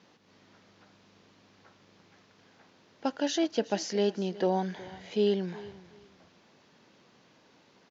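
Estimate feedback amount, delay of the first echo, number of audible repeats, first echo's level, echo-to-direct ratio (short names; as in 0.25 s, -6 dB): 23%, 0.369 s, 2, -19.0 dB, -19.0 dB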